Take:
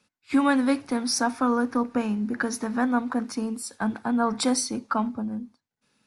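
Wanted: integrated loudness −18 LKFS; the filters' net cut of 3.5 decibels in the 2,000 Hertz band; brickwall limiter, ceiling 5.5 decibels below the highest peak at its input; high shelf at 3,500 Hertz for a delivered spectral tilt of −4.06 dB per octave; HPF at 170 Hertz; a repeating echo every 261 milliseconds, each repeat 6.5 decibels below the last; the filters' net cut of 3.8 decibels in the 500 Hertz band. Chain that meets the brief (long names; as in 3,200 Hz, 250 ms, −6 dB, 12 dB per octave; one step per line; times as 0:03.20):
high-pass filter 170 Hz
parametric band 500 Hz −4 dB
parametric band 2,000 Hz −3 dB
high-shelf EQ 3,500 Hz −7 dB
brickwall limiter −17.5 dBFS
repeating echo 261 ms, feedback 47%, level −6.5 dB
level +10.5 dB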